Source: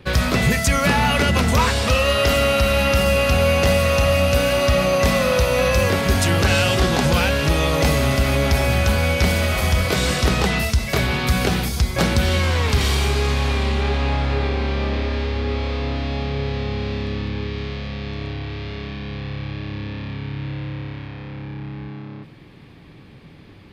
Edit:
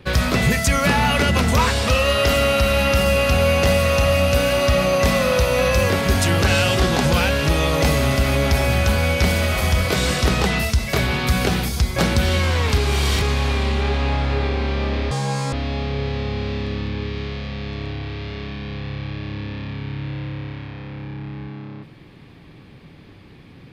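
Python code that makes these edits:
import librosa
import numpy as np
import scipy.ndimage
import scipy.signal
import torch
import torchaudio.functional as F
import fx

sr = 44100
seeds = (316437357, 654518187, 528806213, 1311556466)

y = fx.edit(x, sr, fx.reverse_span(start_s=12.78, length_s=0.44),
    fx.speed_span(start_s=15.11, length_s=0.82, speed=1.97), tone=tone)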